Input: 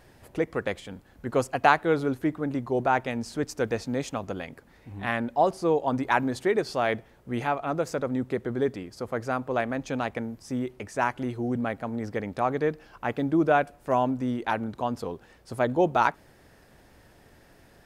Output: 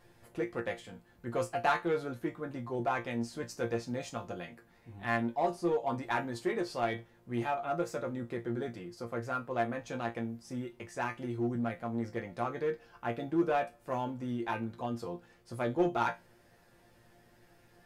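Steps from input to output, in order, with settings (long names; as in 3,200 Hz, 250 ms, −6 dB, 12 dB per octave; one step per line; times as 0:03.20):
resonators tuned to a chord A#2 fifth, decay 0.2 s
in parallel at −4.5 dB: gain into a clipping stage and back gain 32 dB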